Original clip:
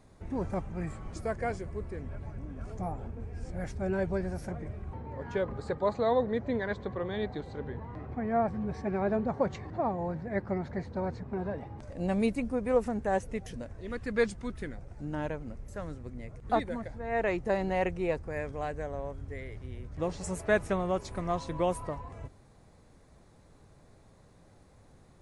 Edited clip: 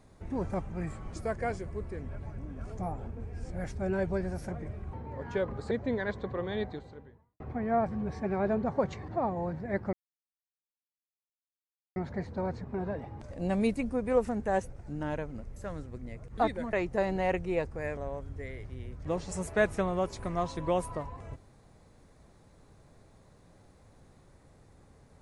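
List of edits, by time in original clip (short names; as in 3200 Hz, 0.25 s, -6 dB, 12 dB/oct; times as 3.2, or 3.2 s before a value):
5.71–6.33 cut
7.25–8.02 fade out quadratic
10.55 insert silence 2.03 s
13.29–14.82 cut
16.85–17.25 cut
18.49–18.89 cut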